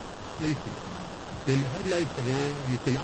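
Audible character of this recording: a quantiser's noise floor 6-bit, dither triangular; phasing stages 8, 2.2 Hz, lowest notch 250–3300 Hz; aliases and images of a low sample rate 2.2 kHz, jitter 20%; MP3

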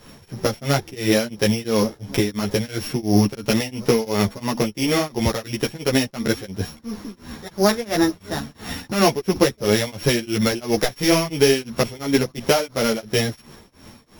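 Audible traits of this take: a buzz of ramps at a fixed pitch in blocks of 8 samples; tremolo triangle 2.9 Hz, depth 100%; a shimmering, thickened sound

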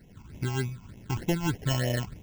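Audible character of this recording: aliases and images of a low sample rate 1.2 kHz, jitter 0%; phasing stages 8, 3.3 Hz, lowest notch 500–1400 Hz; random flutter of the level

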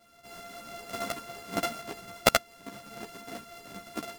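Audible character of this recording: a buzz of ramps at a fixed pitch in blocks of 64 samples; tremolo saw up 5 Hz, depth 35%; a shimmering, thickened sound

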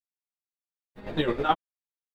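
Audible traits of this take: a quantiser's noise floor 12-bit, dither none; chopped level 9.4 Hz, depth 60%, duty 35%; a shimmering, thickened sound

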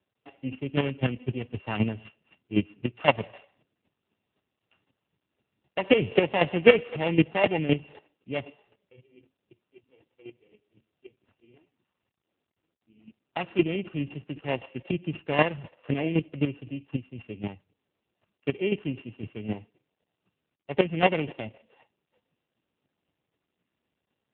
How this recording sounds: a buzz of ramps at a fixed pitch in blocks of 16 samples; chopped level 3.9 Hz, depth 65%, duty 15%; AMR-NB

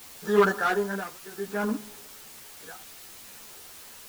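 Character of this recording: tremolo triangle 0.63 Hz, depth 100%; a quantiser's noise floor 8-bit, dither triangular; a shimmering, thickened sound

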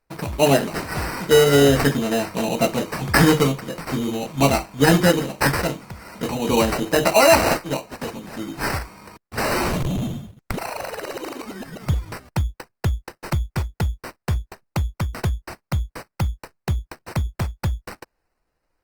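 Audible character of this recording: aliases and images of a low sample rate 3.4 kHz, jitter 0%; Opus

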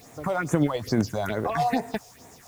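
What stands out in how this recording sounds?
phasing stages 4, 2.3 Hz, lowest notch 270–4700 Hz; a quantiser's noise floor 10-bit, dither triangular

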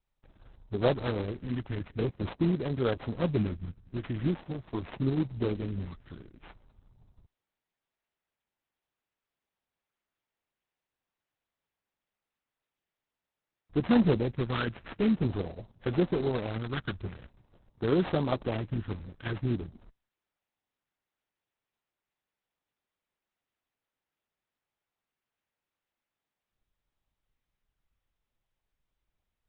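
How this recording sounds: a buzz of ramps at a fixed pitch in blocks of 8 samples; phasing stages 4, 0.46 Hz, lowest notch 670–4100 Hz; aliases and images of a low sample rate 4.8 kHz, jitter 20%; Opus

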